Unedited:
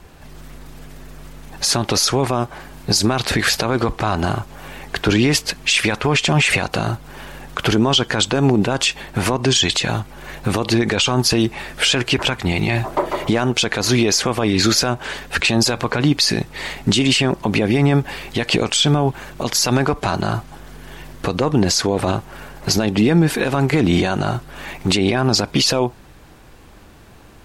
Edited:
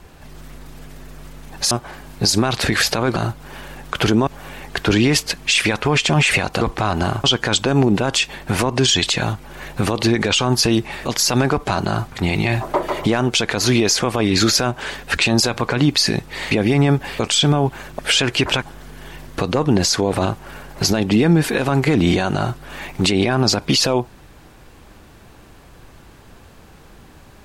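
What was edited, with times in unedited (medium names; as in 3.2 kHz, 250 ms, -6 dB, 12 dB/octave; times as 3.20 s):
1.71–2.38 s: delete
3.83–4.46 s: swap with 6.80–7.91 s
11.72–12.35 s: swap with 19.41–20.48 s
16.74–17.55 s: delete
18.23–18.61 s: delete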